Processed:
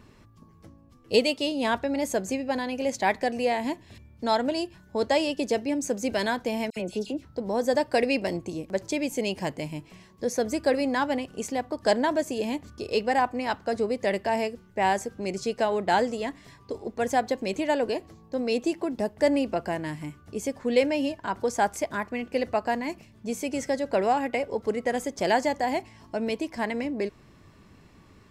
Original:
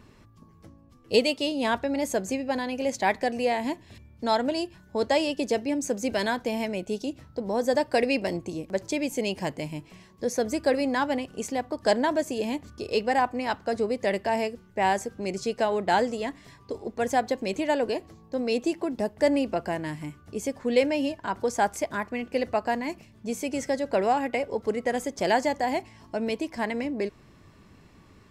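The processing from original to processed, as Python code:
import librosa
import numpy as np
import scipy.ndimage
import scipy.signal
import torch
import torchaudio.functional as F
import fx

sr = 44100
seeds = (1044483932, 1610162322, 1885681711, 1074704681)

y = fx.dispersion(x, sr, late='lows', ms=66.0, hz=2200.0, at=(6.7, 7.25))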